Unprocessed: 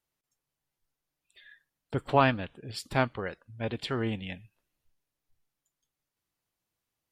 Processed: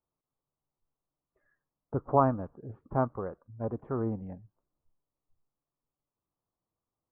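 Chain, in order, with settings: elliptic low-pass 1200 Hz, stop band 80 dB

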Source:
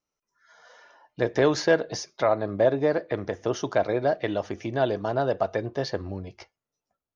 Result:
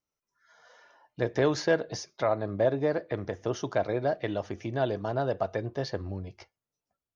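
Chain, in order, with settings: bell 98 Hz +4.5 dB 1.7 oct; gain -4.5 dB

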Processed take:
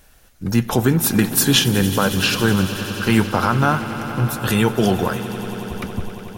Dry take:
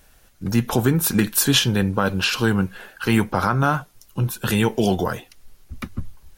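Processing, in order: swelling echo 92 ms, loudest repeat 5, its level -17 dB; gain +2 dB

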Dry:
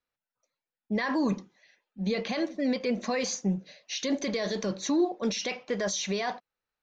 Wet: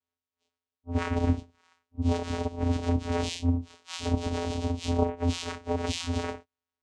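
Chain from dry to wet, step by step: phase scrambler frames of 0.1 s; high shelf 3200 Hz +12 dB; vocoder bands 4, square 86 Hz

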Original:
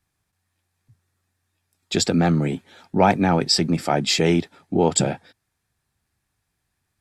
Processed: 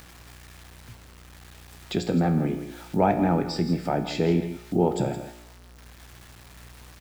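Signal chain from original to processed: LPF 1000 Hz 6 dB/oct; in parallel at -0.5 dB: upward compressor, threshold -23 dBFS; on the sum: resonator 59 Hz, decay 0.78 s, harmonics all, mix 70%; buzz 60 Hz, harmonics 31, -50 dBFS -8 dB/oct; bit-crush 9-bit; echo 0.166 s -12.5 dB; mismatched tape noise reduction encoder only; gain -1.5 dB

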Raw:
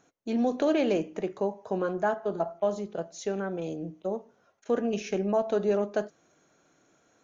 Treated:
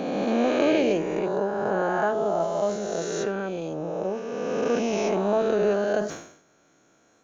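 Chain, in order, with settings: spectral swells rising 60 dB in 2.60 s; sustainer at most 89 dB/s

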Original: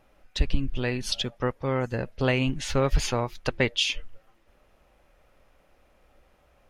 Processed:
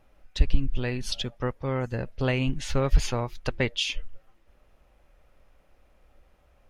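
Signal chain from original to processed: low shelf 110 Hz +7.5 dB; gain -3 dB

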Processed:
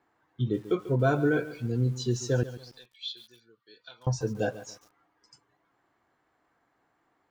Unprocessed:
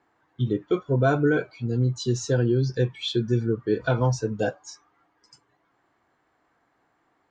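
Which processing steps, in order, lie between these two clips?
2.43–4.07 band-pass 4000 Hz, Q 3.4; lo-fi delay 0.141 s, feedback 35%, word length 7-bit, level -14.5 dB; gain -3.5 dB

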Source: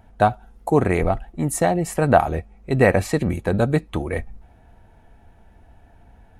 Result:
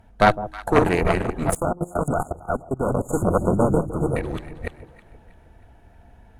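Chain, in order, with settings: reverse delay 0.26 s, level -2 dB; added harmonics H 6 -10 dB, 8 -22 dB, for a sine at 0 dBFS; notch 780 Hz, Q 21; de-hum 156.4 Hz, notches 2; on a send: echo with dull and thin repeats by turns 0.159 s, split 920 Hz, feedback 63%, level -13 dB; 1.56–4.16 on the sum: spectral delete 1500–6500 Hz; 1.51–3.09 level quantiser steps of 20 dB; gain -1.5 dB

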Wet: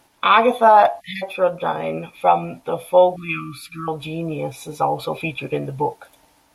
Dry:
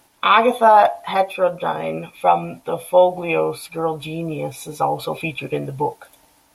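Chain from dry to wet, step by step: 1.01–1.22 spectral delete 220–1700 Hz; 3.16–3.88 brick-wall FIR band-stop 330–1100 Hz; high shelf 7600 Hz -6 dB

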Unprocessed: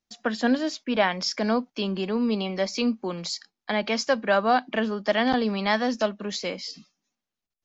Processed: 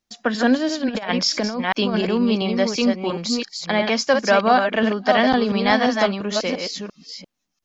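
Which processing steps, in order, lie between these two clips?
reverse delay 0.345 s, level -5 dB; 0.89–2.09 negative-ratio compressor -26 dBFS, ratio -0.5; gain +5 dB

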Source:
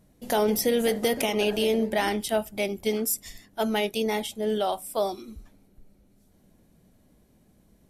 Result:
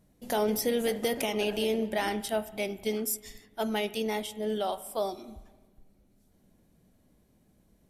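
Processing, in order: spring tank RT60 1.3 s, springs 33/41/46 ms, chirp 65 ms, DRR 15 dB; gain -4.5 dB

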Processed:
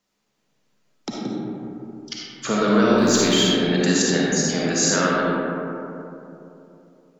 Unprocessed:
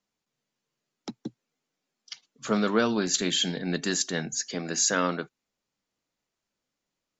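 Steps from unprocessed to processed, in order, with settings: 2.98–3.53 G.711 law mismatch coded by mu; compressor 2:1, threshold -31 dBFS, peak gain reduction 7.5 dB; digital reverb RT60 3.1 s, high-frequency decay 0.3×, pre-delay 15 ms, DRR -5 dB; gain +7 dB

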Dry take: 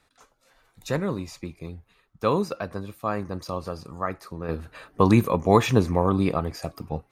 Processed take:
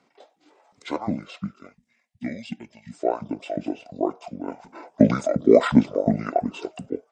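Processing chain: LFO high-pass saw up 2.8 Hz 320–1500 Hz; spectral gain 1.73–2.92, 440–2900 Hz -19 dB; pitch shift -10 st; gain +1.5 dB

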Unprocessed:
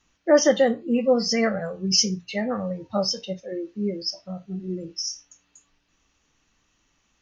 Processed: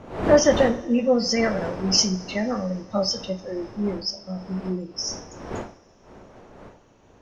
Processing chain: wind noise 630 Hz -35 dBFS; two-slope reverb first 0.45 s, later 3 s, from -17 dB, DRR 11 dB

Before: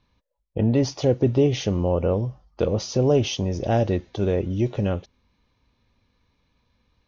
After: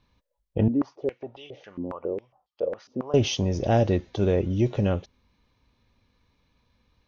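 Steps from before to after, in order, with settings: 0.68–3.14 stepped band-pass 7.3 Hz 270–3300 Hz

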